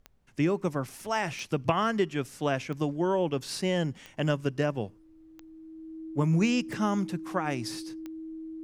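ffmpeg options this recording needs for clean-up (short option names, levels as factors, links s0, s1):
-af "adeclick=t=4,bandreject=f=320:w=30,agate=range=0.0891:threshold=0.00562"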